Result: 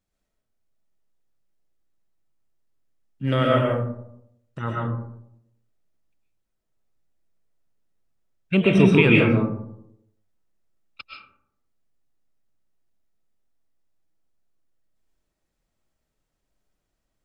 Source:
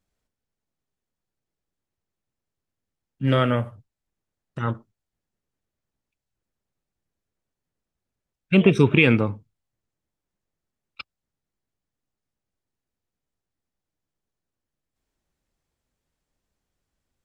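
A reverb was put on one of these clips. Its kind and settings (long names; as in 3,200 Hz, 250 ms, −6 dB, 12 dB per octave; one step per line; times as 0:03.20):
comb and all-pass reverb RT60 0.78 s, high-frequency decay 0.35×, pre-delay 85 ms, DRR −2.5 dB
level −3 dB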